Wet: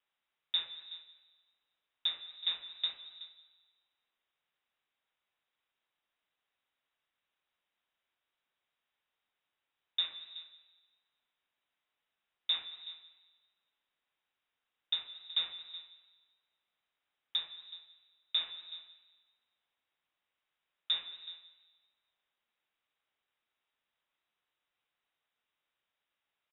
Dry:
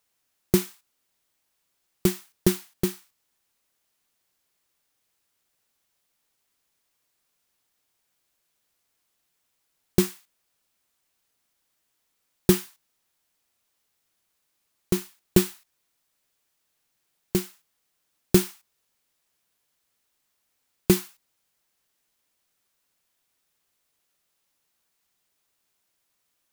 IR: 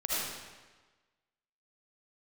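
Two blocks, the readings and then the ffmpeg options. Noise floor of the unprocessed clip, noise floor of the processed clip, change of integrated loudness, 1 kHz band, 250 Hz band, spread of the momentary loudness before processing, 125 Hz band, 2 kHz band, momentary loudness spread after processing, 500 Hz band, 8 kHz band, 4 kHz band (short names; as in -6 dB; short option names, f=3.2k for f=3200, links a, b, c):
-76 dBFS, under -85 dBFS, -10.5 dB, -14.0 dB, under -40 dB, 7 LU, under -40 dB, -10.5 dB, 16 LU, under -35 dB, under -40 dB, +5.5 dB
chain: -filter_complex "[0:a]acrossover=split=2900[a][b];[b]acompressor=threshold=-38dB:ratio=4:attack=1:release=60[c];[a][c]amix=inputs=2:normalize=0,alimiter=limit=-15dB:level=0:latency=1:release=61,asplit=2[d][e];[e]adelay=373.2,volume=-16dB,highshelf=f=4k:g=-8.4[f];[d][f]amix=inputs=2:normalize=0,asplit=2[g][h];[1:a]atrim=start_sample=2205,adelay=72[i];[h][i]afir=irnorm=-1:irlink=0,volume=-20dB[j];[g][j]amix=inputs=2:normalize=0,lowpass=f=3.3k:t=q:w=0.5098,lowpass=f=3.3k:t=q:w=0.6013,lowpass=f=3.3k:t=q:w=0.9,lowpass=f=3.3k:t=q:w=2.563,afreqshift=-3900,volume=-5.5dB"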